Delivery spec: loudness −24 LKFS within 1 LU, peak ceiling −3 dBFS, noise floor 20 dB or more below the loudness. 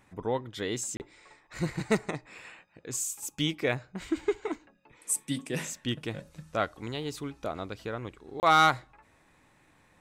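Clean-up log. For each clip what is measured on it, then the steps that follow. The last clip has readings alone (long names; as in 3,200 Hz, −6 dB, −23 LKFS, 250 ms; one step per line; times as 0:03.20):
number of dropouts 2; longest dropout 29 ms; integrated loudness −31.0 LKFS; sample peak −13.0 dBFS; target loudness −24.0 LKFS
→ repair the gap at 0:00.97/0:08.40, 29 ms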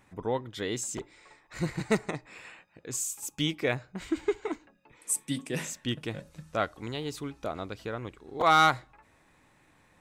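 number of dropouts 0; integrated loudness −31.0 LKFS; sample peak −13.0 dBFS; target loudness −24.0 LKFS
→ level +7 dB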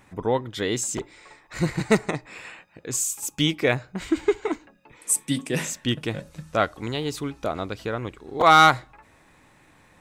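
integrated loudness −24.0 LKFS; sample peak −6.0 dBFS; background noise floor −57 dBFS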